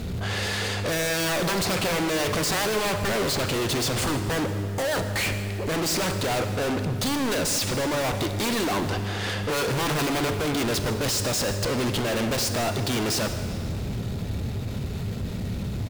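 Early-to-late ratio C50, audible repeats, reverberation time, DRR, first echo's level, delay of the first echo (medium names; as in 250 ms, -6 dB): 7.5 dB, 1, 2.6 s, 7.0 dB, -18.0 dB, 155 ms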